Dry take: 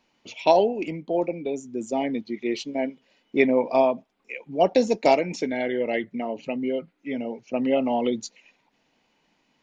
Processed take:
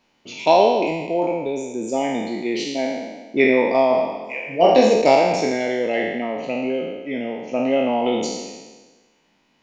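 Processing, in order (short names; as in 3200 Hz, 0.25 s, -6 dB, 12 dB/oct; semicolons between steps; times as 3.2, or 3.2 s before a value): spectral trails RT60 1.31 s; 3.88–4.94 flutter echo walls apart 4 m, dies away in 0.23 s; gain +1.5 dB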